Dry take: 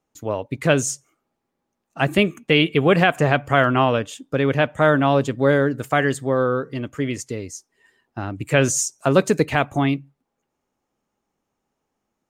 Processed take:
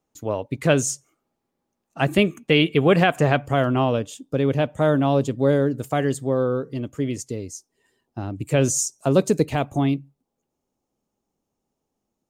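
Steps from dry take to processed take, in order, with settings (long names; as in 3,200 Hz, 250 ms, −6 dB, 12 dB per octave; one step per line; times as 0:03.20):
parametric band 1,700 Hz −3.5 dB 1.7 octaves, from 0:03.46 −11 dB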